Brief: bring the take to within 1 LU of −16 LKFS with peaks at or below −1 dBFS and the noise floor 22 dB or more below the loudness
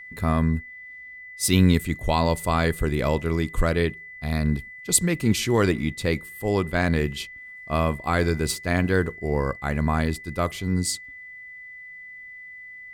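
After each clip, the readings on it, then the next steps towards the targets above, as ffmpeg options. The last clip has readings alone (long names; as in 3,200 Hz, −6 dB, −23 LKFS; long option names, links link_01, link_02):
interfering tone 2,000 Hz; level of the tone −39 dBFS; integrated loudness −24.0 LKFS; sample peak −4.5 dBFS; target loudness −16.0 LKFS
→ -af "bandreject=frequency=2000:width=30"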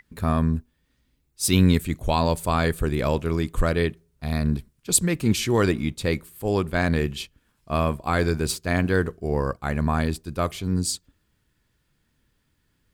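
interfering tone none found; integrated loudness −24.0 LKFS; sample peak −4.5 dBFS; target loudness −16.0 LKFS
→ -af "volume=8dB,alimiter=limit=-1dB:level=0:latency=1"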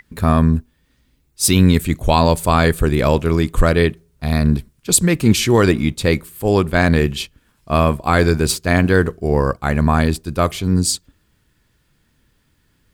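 integrated loudness −16.5 LKFS; sample peak −1.0 dBFS; background noise floor −62 dBFS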